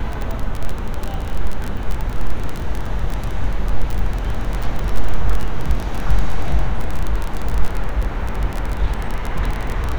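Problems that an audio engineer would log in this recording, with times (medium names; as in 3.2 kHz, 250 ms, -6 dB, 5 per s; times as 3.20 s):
crackle 22 per s -17 dBFS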